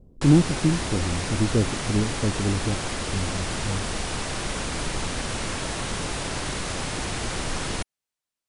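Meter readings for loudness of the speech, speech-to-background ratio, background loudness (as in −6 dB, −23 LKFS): −25.5 LKFS, 3.5 dB, −29.0 LKFS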